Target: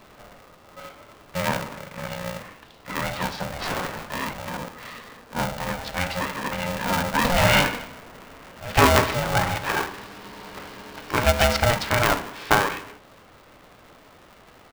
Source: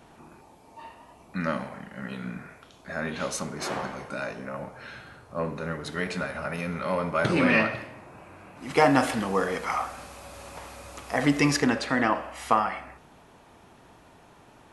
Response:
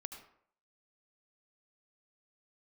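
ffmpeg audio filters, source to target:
-af "bandreject=frequency=50:width_type=h:width=6,bandreject=frequency=100:width_type=h:width=6,bandreject=frequency=150:width_type=h:width=6,aresample=11025,aresample=44100,aeval=exprs='val(0)*sgn(sin(2*PI*360*n/s))':channel_layout=same,volume=3.5dB"

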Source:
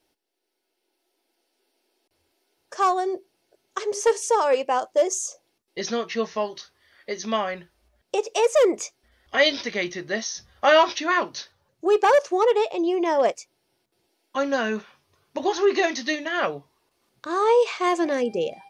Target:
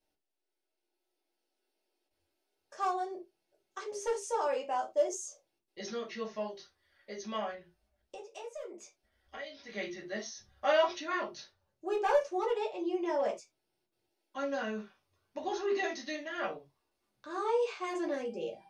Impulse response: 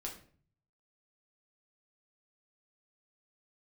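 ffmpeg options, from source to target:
-filter_complex "[0:a]asplit=3[link_01][link_02][link_03];[link_01]afade=type=out:start_time=7.53:duration=0.02[link_04];[link_02]acompressor=threshold=-32dB:ratio=5,afade=type=in:start_time=7.53:duration=0.02,afade=type=out:start_time=9.68:duration=0.02[link_05];[link_03]afade=type=in:start_time=9.68:duration=0.02[link_06];[link_04][link_05][link_06]amix=inputs=3:normalize=0[link_07];[1:a]atrim=start_sample=2205,afade=type=out:start_time=0.22:duration=0.01,atrim=end_sample=10143,asetrate=83790,aresample=44100[link_08];[link_07][link_08]afir=irnorm=-1:irlink=0,volume=-5.5dB"

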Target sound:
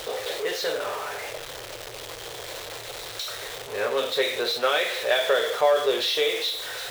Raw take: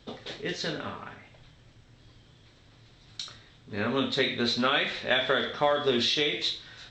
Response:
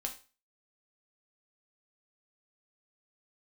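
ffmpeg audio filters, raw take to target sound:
-af "aeval=exprs='val(0)+0.5*0.0398*sgn(val(0))':channel_layout=same,lowshelf=frequency=330:width_type=q:width=3:gain=-13,volume=-1.5dB"

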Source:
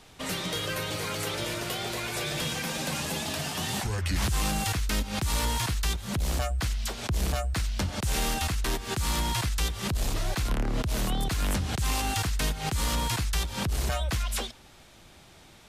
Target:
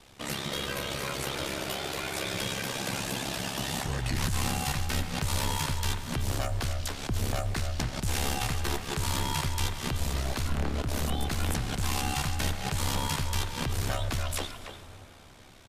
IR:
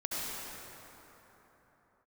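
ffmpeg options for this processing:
-filter_complex "[0:a]asettb=1/sr,asplit=3[link_01][link_02][link_03];[link_01]atrim=end=8.154[link_04];[link_02]atrim=start=8.15:end=8.62,asetpts=PTS-STARTPTS,afade=type=in:duration=0.004:curve=qsin,afade=type=out:start_time=0.466:duration=0.004:curve=qsin,aeval=exprs='0.112*(cos(1*acos(clip(val(0)/0.112,-1,1)))-cos(1*PI/2))+0.002*(cos(5*acos(clip(val(0)/0.112,-1,1)))-cos(5*PI/2))':channel_layout=same[link_05];[link_03]atrim=start=8.616[link_06];[link_04][link_05]acrossfade=duration=0.004:curve1=hsin:curve2=qsin[link_07];[link_07][link_06]acrossfade=duration=0.004:curve1=qsin:curve2=hsin,aeval=exprs='val(0)*sin(2*PI*34*n/s)':channel_layout=same,asplit=2[link_08][link_09];[link_09]adelay=290,highpass=300,lowpass=3400,asoftclip=type=hard:threshold=-27dB,volume=-7dB[link_10];[link_08][link_10]amix=inputs=2:normalize=0,asplit=2[link_11][link_12];[1:a]atrim=start_sample=2205[link_13];[link_12][link_13]afir=irnorm=-1:irlink=0,volume=-16dB[link_14];[link_11][link_14]amix=inputs=2:normalize=0"

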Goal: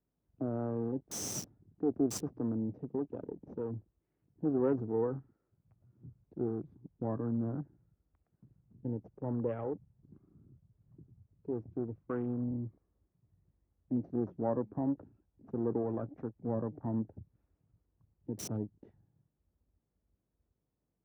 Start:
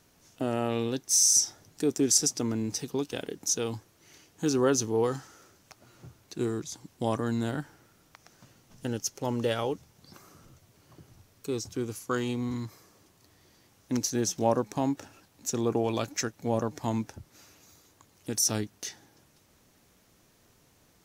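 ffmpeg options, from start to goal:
ffmpeg -i in.wav -filter_complex "[0:a]aeval=exprs='if(lt(val(0),0),0.447*val(0),val(0))':channel_layout=same,highpass=frequency=83:width=0.5412,highpass=frequency=83:width=1.3066,tiltshelf=frequency=900:gain=8.5,aeval=exprs='val(0)+0.000562*(sin(2*PI*50*n/s)+sin(2*PI*2*50*n/s)/2+sin(2*PI*3*50*n/s)/3+sin(2*PI*4*50*n/s)/4+sin(2*PI*5*50*n/s)/5)':channel_layout=same,afwtdn=0.00794,acrossover=split=240|2500[link_01][link_02][link_03];[link_03]acrusher=bits=5:mix=0:aa=0.000001[link_04];[link_01][link_02][link_04]amix=inputs=3:normalize=0,volume=-7.5dB" out.wav

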